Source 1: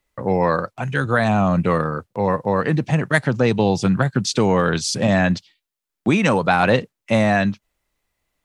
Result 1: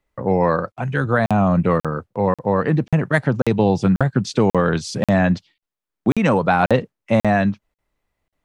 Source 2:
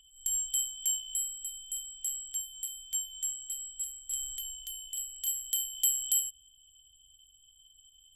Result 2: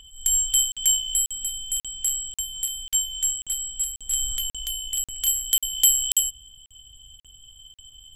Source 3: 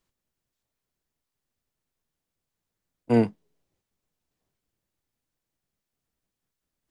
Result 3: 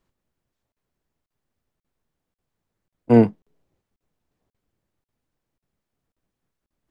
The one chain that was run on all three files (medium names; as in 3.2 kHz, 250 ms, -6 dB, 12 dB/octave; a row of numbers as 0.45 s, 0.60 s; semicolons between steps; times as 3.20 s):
treble shelf 2.5 kHz -11 dB; crackling interface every 0.54 s, samples 2048, zero, from 0.72 s; peak normalisation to -3 dBFS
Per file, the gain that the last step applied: +1.5 dB, +20.0 dB, +7.0 dB